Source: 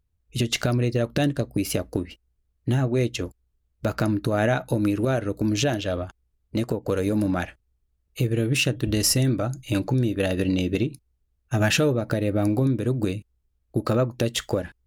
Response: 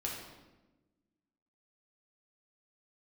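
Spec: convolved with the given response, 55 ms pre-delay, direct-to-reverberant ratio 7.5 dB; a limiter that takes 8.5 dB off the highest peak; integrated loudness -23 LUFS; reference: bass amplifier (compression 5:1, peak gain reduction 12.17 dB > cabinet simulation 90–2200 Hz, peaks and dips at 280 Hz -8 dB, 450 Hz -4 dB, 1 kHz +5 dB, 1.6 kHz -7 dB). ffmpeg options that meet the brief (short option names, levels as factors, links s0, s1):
-filter_complex "[0:a]alimiter=limit=0.158:level=0:latency=1,asplit=2[s0][s1];[1:a]atrim=start_sample=2205,adelay=55[s2];[s1][s2]afir=irnorm=-1:irlink=0,volume=0.335[s3];[s0][s3]amix=inputs=2:normalize=0,acompressor=threshold=0.0251:ratio=5,highpass=f=90:w=0.5412,highpass=f=90:w=1.3066,equalizer=f=280:t=q:w=4:g=-8,equalizer=f=450:t=q:w=4:g=-4,equalizer=f=1000:t=q:w=4:g=5,equalizer=f=1600:t=q:w=4:g=-7,lowpass=f=2200:w=0.5412,lowpass=f=2200:w=1.3066,volume=5.96"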